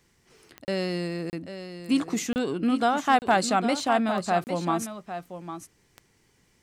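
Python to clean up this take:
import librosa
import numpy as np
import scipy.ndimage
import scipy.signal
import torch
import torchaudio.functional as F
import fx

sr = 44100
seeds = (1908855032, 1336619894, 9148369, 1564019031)

y = fx.fix_declip(x, sr, threshold_db=-11.0)
y = fx.fix_declick_ar(y, sr, threshold=10.0)
y = fx.fix_interpolate(y, sr, at_s=(0.65, 1.3, 2.33, 3.19, 4.44), length_ms=29.0)
y = fx.fix_echo_inverse(y, sr, delay_ms=803, level_db=-10.5)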